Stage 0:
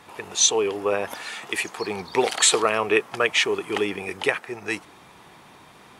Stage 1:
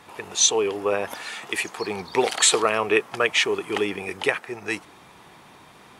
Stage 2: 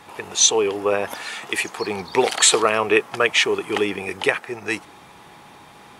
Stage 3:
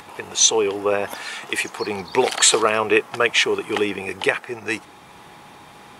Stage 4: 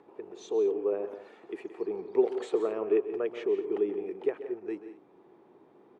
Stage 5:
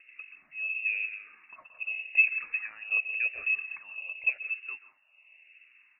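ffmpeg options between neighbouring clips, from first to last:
-af anull
-af "aeval=exprs='val(0)+0.002*sin(2*PI*830*n/s)':c=same,volume=3dB"
-af "acompressor=mode=upward:threshold=-39dB:ratio=2.5"
-filter_complex "[0:a]bandpass=f=370:t=q:w=3.2:csg=0,asplit=2[a][b];[b]aecho=0:1:132|174|222:0.2|0.224|0.106[c];[a][c]amix=inputs=2:normalize=0,volume=-3.5dB"
-filter_complex "[0:a]flanger=delay=0.7:depth=8.7:regen=-79:speed=0.44:shape=sinusoidal,lowpass=f=2.6k:t=q:w=0.5098,lowpass=f=2.6k:t=q:w=0.6013,lowpass=f=2.6k:t=q:w=0.9,lowpass=f=2.6k:t=q:w=2.563,afreqshift=-3000,asplit=2[a][b];[b]afreqshift=-0.9[c];[a][c]amix=inputs=2:normalize=1,volume=5.5dB"

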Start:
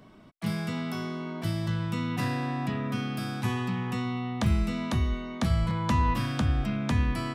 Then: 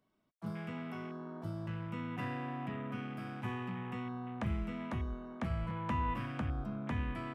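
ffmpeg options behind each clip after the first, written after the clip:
-af "bass=f=250:g=-4,treble=f=4k:g=2,afwtdn=0.0112,volume=-7.5dB"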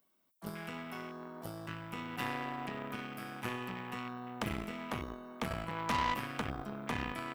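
-af "aeval=exprs='0.0668*(cos(1*acos(clip(val(0)/0.0668,-1,1)))-cos(1*PI/2))+0.0168*(cos(6*acos(clip(val(0)/0.0668,-1,1)))-cos(6*PI/2))+0.00266*(cos(7*acos(clip(val(0)/0.0668,-1,1)))-cos(7*PI/2))+0.00841*(cos(8*acos(clip(val(0)/0.0668,-1,1)))-cos(8*PI/2))':c=same,aemphasis=mode=production:type=bsi,volume=3.5dB"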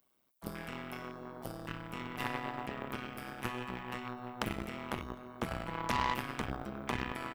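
-filter_complex "[0:a]asplit=2[a][b];[b]adelay=256.6,volume=-21dB,highshelf=f=4k:g=-5.77[c];[a][c]amix=inputs=2:normalize=0,tremolo=f=130:d=0.889,volume=4dB"

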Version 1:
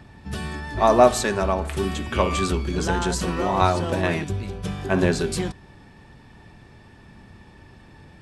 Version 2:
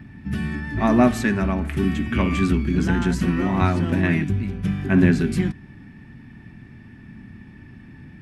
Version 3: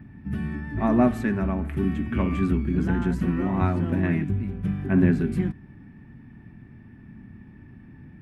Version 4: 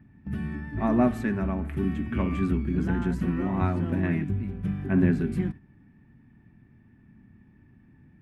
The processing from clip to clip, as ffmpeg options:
-af "equalizer=f=125:t=o:w=1:g=5,equalizer=f=250:t=o:w=1:g=11,equalizer=f=500:t=o:w=1:g=-10,equalizer=f=1k:t=o:w=1:g=-6,equalizer=f=2k:t=o:w=1:g=7,equalizer=f=4k:t=o:w=1:g=-7,equalizer=f=8k:t=o:w=1:g=-9"
-af "equalizer=f=5.7k:t=o:w=2.4:g=-13.5,volume=-3dB"
-af "agate=range=-7dB:threshold=-34dB:ratio=16:detection=peak,volume=-2.5dB"

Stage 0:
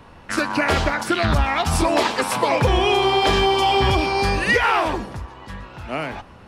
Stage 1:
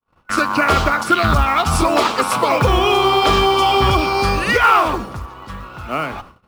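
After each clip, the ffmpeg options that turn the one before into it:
-af "agate=range=-55dB:threshold=-41dB:ratio=16:detection=peak,superequalizer=10b=2.24:11b=0.708,acrusher=bits=7:mode=log:mix=0:aa=0.000001,volume=2.5dB"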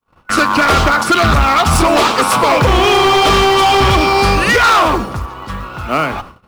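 -af "volume=14.5dB,asoftclip=hard,volume=-14.5dB,volume=7dB"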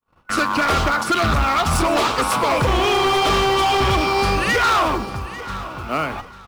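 -af "aecho=1:1:844|1688|2532:0.168|0.042|0.0105,volume=-7dB"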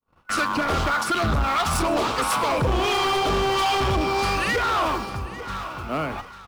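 -filter_complex "[0:a]acrossover=split=730[a][b];[a]aeval=exprs='val(0)*(1-0.5/2+0.5/2*cos(2*PI*1.5*n/s))':c=same[c];[b]aeval=exprs='val(0)*(1-0.5/2-0.5/2*cos(2*PI*1.5*n/s))':c=same[d];[c][d]amix=inputs=2:normalize=0,asoftclip=type=tanh:threshold=-16dB"

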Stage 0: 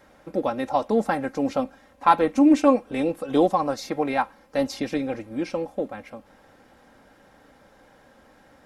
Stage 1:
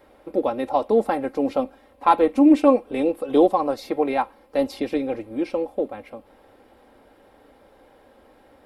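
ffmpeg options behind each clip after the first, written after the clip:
-af "equalizer=f=160:t=o:w=0.67:g=-11,equalizer=f=400:t=o:w=0.67:g=5,equalizer=f=1.6k:t=o:w=0.67:g=-6,equalizer=f=6.3k:t=o:w=0.67:g=-12,volume=1.5dB"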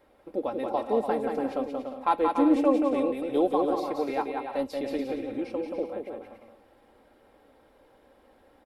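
-af "aecho=1:1:180|288|352.8|391.7|415:0.631|0.398|0.251|0.158|0.1,volume=-8dB"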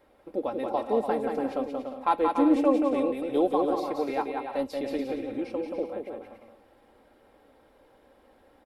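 -af anull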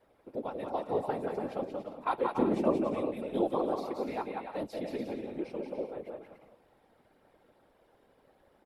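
-af "afftfilt=real='hypot(re,im)*cos(2*PI*random(0))':imag='hypot(re,im)*sin(2*PI*random(1))':win_size=512:overlap=0.75"

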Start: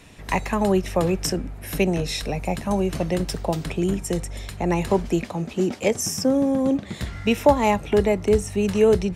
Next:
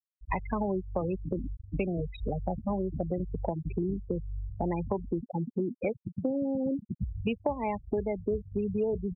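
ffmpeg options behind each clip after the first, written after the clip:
-filter_complex "[0:a]acrossover=split=3600[a][b];[b]acompressor=threshold=-40dB:ratio=4:attack=1:release=60[c];[a][c]amix=inputs=2:normalize=0,afftfilt=real='re*gte(hypot(re,im),0.141)':imag='im*gte(hypot(re,im),0.141)':win_size=1024:overlap=0.75,acompressor=threshold=-28dB:ratio=5"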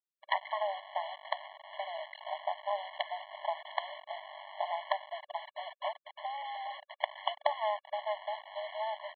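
-af "equalizer=f=92:w=1.7:g=10.5,aresample=8000,acrusher=bits=4:dc=4:mix=0:aa=0.000001,aresample=44100,afftfilt=real='re*eq(mod(floor(b*sr/1024/570),2),1)':imag='im*eq(mod(floor(b*sr/1024/570),2),1)':win_size=1024:overlap=0.75,volume=5dB"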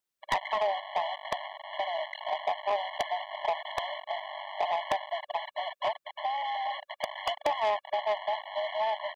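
-af "asoftclip=type=tanh:threshold=-28.5dB,volume=8dB"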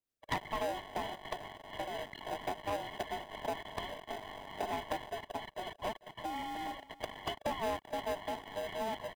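-filter_complex "[0:a]acrossover=split=760[a][b];[a]aeval=exprs='val(0)*(1-0.5/2+0.5/2*cos(2*PI*4.3*n/s))':c=same[c];[b]aeval=exprs='val(0)*(1-0.5/2-0.5/2*cos(2*PI*4.3*n/s))':c=same[d];[c][d]amix=inputs=2:normalize=0,asplit=2[e][f];[f]acrusher=samples=40:mix=1:aa=0.000001,volume=-6dB[g];[e][g]amix=inputs=2:normalize=0,aecho=1:1:445:0.106,volume=-5.5dB"

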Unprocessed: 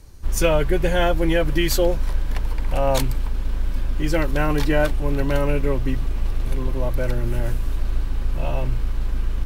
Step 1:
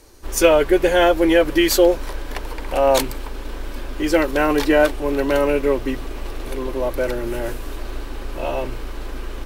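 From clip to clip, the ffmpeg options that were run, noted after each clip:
-af "lowshelf=f=230:t=q:w=1.5:g=-12,volume=4.5dB"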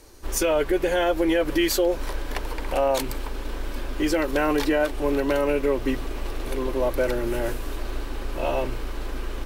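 -af "alimiter=limit=-12dB:level=0:latency=1:release=134,volume=-1dB"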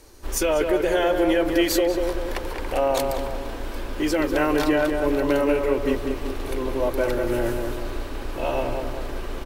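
-filter_complex "[0:a]asplit=2[a][b];[b]adelay=193,lowpass=f=1.8k:p=1,volume=-4dB,asplit=2[c][d];[d]adelay=193,lowpass=f=1.8k:p=1,volume=0.53,asplit=2[e][f];[f]adelay=193,lowpass=f=1.8k:p=1,volume=0.53,asplit=2[g][h];[h]adelay=193,lowpass=f=1.8k:p=1,volume=0.53,asplit=2[i][j];[j]adelay=193,lowpass=f=1.8k:p=1,volume=0.53,asplit=2[k][l];[l]adelay=193,lowpass=f=1.8k:p=1,volume=0.53,asplit=2[m][n];[n]adelay=193,lowpass=f=1.8k:p=1,volume=0.53[o];[a][c][e][g][i][k][m][o]amix=inputs=8:normalize=0"

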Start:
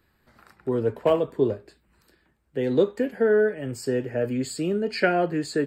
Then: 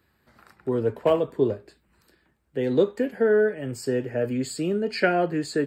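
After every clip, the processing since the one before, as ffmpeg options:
-af "highpass=50"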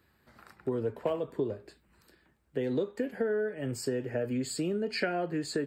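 -af "acompressor=threshold=-27dB:ratio=5,volume=-1dB"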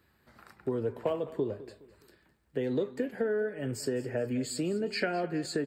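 -af "aecho=1:1:208|416|624:0.133|0.0507|0.0193"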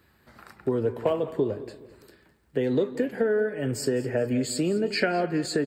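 -filter_complex "[0:a]asplit=2[a][b];[b]adelay=173,lowpass=f=2k:p=1,volume=-17.5dB,asplit=2[c][d];[d]adelay=173,lowpass=f=2k:p=1,volume=0.45,asplit=2[e][f];[f]adelay=173,lowpass=f=2k:p=1,volume=0.45,asplit=2[g][h];[h]adelay=173,lowpass=f=2k:p=1,volume=0.45[i];[a][c][e][g][i]amix=inputs=5:normalize=0,volume=6dB"

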